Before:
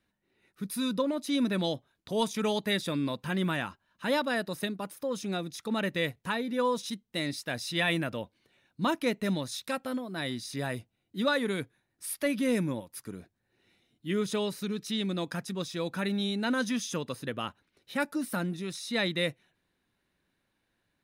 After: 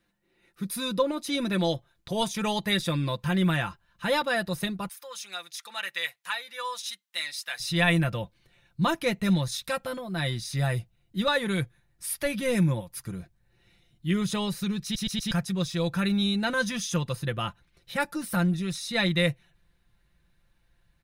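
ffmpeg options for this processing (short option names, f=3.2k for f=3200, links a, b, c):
-filter_complex "[0:a]asettb=1/sr,asplit=3[a][b][c];[a]atrim=end=4.884[d];[b]atrim=start=4.88:end=7.6,asetpts=PTS-STARTPTS,afade=t=in:d=0.004:c=qsin,afade=t=out:st=2.716:d=0.004:c=qsin,highpass=1.3k[e];[c]atrim=start=7.596[f];[d][e]acrossfade=d=0.004:c1=hsin:c2=qsin[g];[g][f]acrossfade=d=0.004:c1=qsin:c2=hsin,asplit=5[h][i][j][k][l];[h]atrim=end=14.952[m];[i]atrim=start=14.828:end=14.952[n];[j]atrim=start=14.828:end=14.952[o];[k]atrim=start=14.828:end=14.952[p];[l]atrim=start=15.308[q];[m][n]acrossfade=d=0.004:c1=hsin:c2=hsin[r];[r][o]acrossfade=d=0.004:c1=hsin:c2=hsin[s];[s][p]acrossfade=d=0.004:c1=hsin:c2=hsin[t];[t][q]acrossfade=d=0.004:c1=hsin:c2=hsin,aecho=1:1:5.8:0.55,asubboost=boost=10.5:cutoff=84,volume=3dB"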